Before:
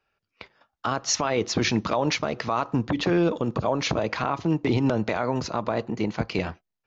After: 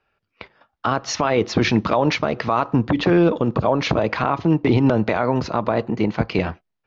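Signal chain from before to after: distance through air 160 m; trim +6.5 dB

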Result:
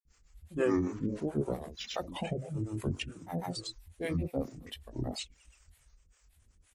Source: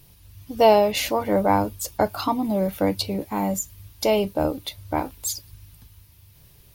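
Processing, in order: treble shelf 3.2 kHz -2.5 dB; speakerphone echo 90 ms, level -14 dB; pitch shift -8.5 st; harmonic tremolo 5.2 Hz, depth 100%, crossover 460 Hz; granulator 245 ms, grains 9.6 per s, pitch spread up and down by 7 st; trim -5 dB

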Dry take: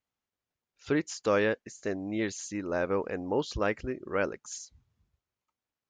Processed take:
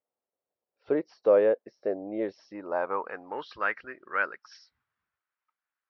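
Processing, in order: knee-point frequency compression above 3.7 kHz 1.5:1; Chebyshev shaper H 8 -40 dB, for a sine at -14.5 dBFS; band-pass sweep 550 Hz -> 1.5 kHz, 2.27–3.38 s; trim +8 dB

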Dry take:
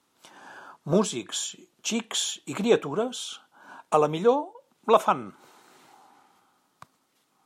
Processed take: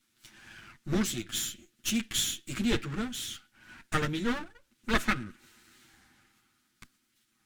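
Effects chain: comb filter that takes the minimum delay 8.8 ms; high-order bell 680 Hz -15 dB

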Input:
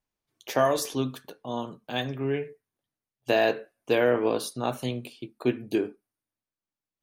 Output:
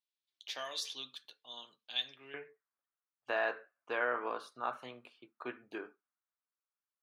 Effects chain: band-pass filter 3.7 kHz, Q 2.8, from 2.34 s 1.3 kHz; trim +1 dB

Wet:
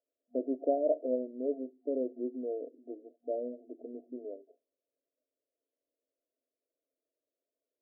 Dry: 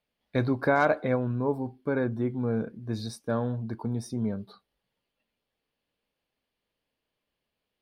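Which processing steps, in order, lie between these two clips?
bass shelf 360 Hz -10 dB; FFT band-pass 240–710 Hz

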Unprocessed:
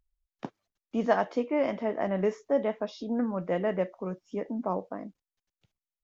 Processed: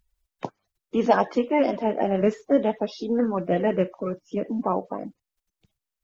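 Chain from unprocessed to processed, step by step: coarse spectral quantiser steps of 30 dB; trim +6.5 dB

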